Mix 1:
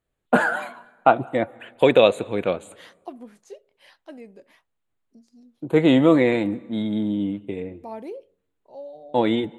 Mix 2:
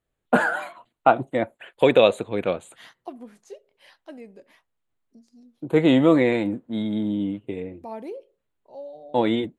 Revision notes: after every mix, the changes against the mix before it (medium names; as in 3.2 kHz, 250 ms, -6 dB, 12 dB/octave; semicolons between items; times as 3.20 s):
reverb: off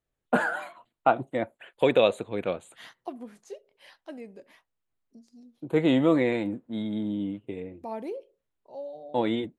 first voice -5.0 dB